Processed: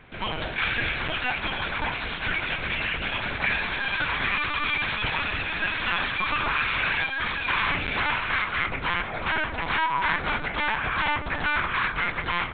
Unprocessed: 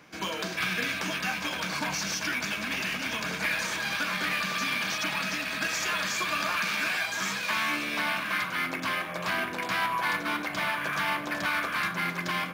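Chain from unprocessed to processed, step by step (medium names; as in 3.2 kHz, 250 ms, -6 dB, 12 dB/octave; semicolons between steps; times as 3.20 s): dynamic bell 160 Hz, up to -5 dB, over -52 dBFS, Q 1.1; LPC vocoder at 8 kHz pitch kept; trim +4 dB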